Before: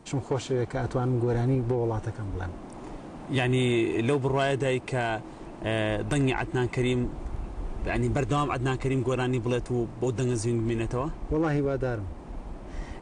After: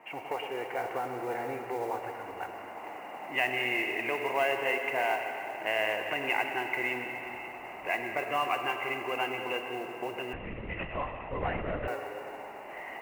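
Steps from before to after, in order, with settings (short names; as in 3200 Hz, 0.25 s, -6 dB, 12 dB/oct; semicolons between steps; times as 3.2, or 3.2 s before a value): HPF 510 Hz 6 dB/oct; tilt +3.5 dB/oct; in parallel at -2 dB: compressor, threshold -43 dBFS, peak gain reduction 19.5 dB; on the sum: rippled Chebyshev low-pass 2900 Hz, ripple 9 dB; split-band echo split 1000 Hz, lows 0.111 s, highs 0.183 s, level -12.5 dB; digital reverb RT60 3.3 s, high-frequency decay 0.95×, pre-delay 20 ms, DRR 5 dB; modulation noise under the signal 24 dB; 10.33–11.88 LPC vocoder at 8 kHz whisper; gain +3 dB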